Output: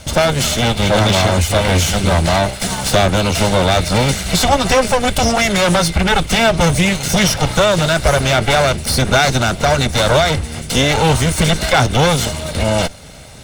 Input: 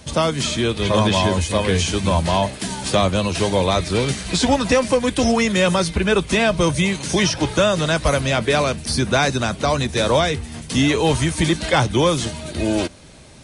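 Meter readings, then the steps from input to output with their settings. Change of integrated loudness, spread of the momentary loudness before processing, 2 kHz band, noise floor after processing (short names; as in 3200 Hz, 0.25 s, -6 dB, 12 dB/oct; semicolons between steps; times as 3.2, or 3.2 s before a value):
+4.5 dB, 5 LU, +6.0 dB, -29 dBFS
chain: minimum comb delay 1.4 ms; in parallel at +2 dB: limiter -16 dBFS, peak gain reduction 9.5 dB; on the sum: gain +1.5 dB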